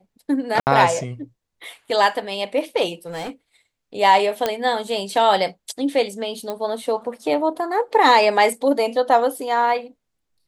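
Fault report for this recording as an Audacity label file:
0.600000	0.670000	gap 69 ms
3.060000	3.300000	clipped -26 dBFS
4.460000	4.460000	pop -6 dBFS
6.500000	6.500000	pop -14 dBFS

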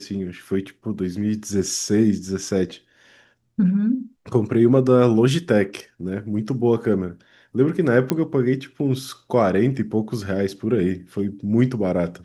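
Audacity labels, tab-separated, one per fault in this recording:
8.100000	8.100000	pop -6 dBFS

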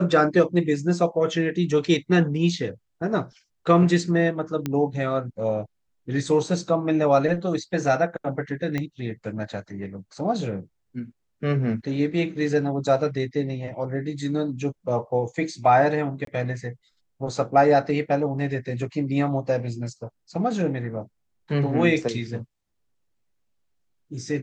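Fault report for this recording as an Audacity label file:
4.660000	4.660000	pop -13 dBFS
8.780000	8.780000	pop -15 dBFS
16.250000	16.270000	gap 23 ms

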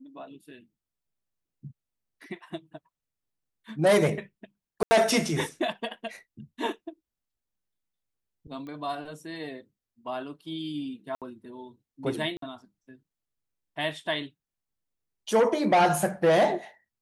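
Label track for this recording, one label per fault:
4.830000	4.910000	gap 80 ms
8.670000	8.670000	pop -31 dBFS
11.150000	11.220000	gap 67 ms
12.370000	12.420000	gap 53 ms

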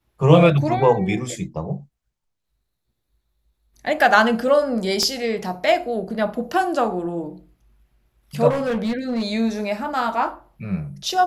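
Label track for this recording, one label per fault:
5.030000	5.030000	pop -9 dBFS
8.490000	9.260000	clipped -19 dBFS

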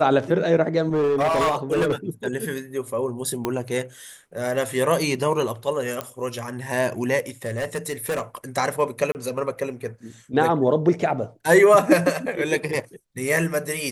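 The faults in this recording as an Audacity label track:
0.920000	1.950000	clipped -17 dBFS
3.450000	3.450000	pop -10 dBFS
6.010000	6.010000	pop -12 dBFS
7.450000	8.350000	clipped -21 dBFS
9.120000	9.150000	gap 29 ms

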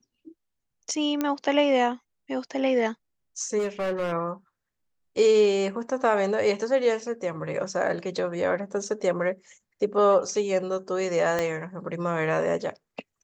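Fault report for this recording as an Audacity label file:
1.210000	1.210000	pop -12 dBFS
3.580000	4.130000	clipped -23 dBFS
11.390000	11.390000	pop -12 dBFS

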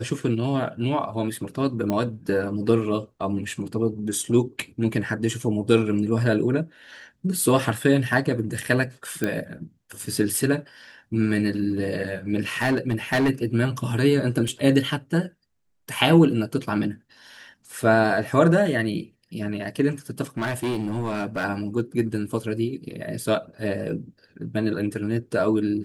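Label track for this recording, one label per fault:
1.900000	1.900000	pop -13 dBFS
9.240000	9.240000	pop -11 dBFS
12.620000	13.300000	clipped -17 dBFS
14.480000	14.480000	gap 3 ms
20.370000	21.450000	clipped -22 dBFS

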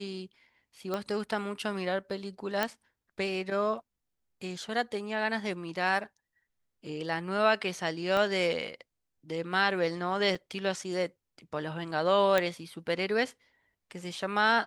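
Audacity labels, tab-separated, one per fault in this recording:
0.940000	0.940000	pop -19 dBFS
2.630000	2.630000	pop -12 dBFS
8.170000	8.170000	pop -17 dBFS
10.350000	10.350000	gap 4.1 ms
12.380000	12.380000	pop -12 dBFS

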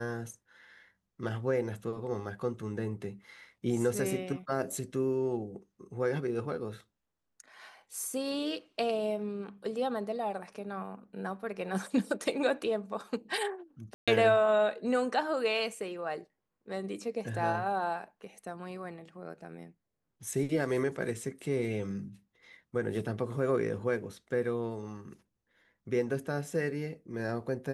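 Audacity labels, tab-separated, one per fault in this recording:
13.940000	14.080000	gap 0.136 s

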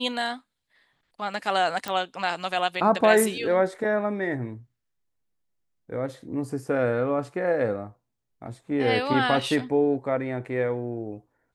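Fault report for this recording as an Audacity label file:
1.880000	1.880000	pop

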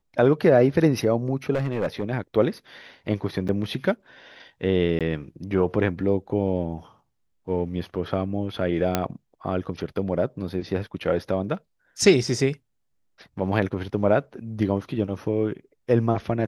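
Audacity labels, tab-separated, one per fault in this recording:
1.530000	2.040000	clipped -20 dBFS
3.480000	3.490000	gap 7.5 ms
4.990000	5.010000	gap 17 ms
8.950000	8.950000	pop -6 dBFS

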